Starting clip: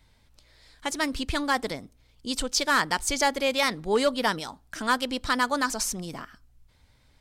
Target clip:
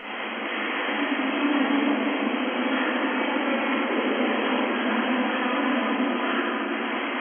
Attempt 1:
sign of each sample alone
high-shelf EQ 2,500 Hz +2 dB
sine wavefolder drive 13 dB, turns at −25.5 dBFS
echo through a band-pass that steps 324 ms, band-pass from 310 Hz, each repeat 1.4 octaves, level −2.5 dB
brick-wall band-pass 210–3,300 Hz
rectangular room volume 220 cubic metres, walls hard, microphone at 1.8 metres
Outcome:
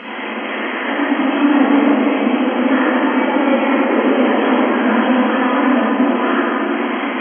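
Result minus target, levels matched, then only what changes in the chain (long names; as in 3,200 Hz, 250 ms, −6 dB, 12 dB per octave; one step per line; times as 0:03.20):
sine wavefolder: distortion −13 dB
change: sine wavefolder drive 21 dB, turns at −25.5 dBFS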